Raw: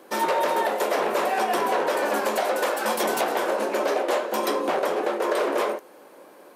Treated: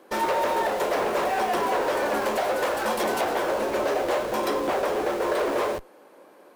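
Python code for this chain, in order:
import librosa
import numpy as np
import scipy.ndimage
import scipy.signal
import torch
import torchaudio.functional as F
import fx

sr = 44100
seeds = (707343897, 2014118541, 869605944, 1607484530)

p1 = fx.high_shelf(x, sr, hz=5000.0, db=-5.0)
p2 = fx.schmitt(p1, sr, flips_db=-34.0)
p3 = p1 + F.gain(torch.from_numpy(p2), -8.0).numpy()
y = F.gain(torch.from_numpy(p3), -3.0).numpy()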